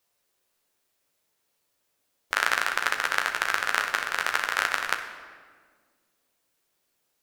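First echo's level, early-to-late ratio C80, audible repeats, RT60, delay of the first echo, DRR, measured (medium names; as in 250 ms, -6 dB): no echo, 9.5 dB, no echo, 1.7 s, no echo, 3.0 dB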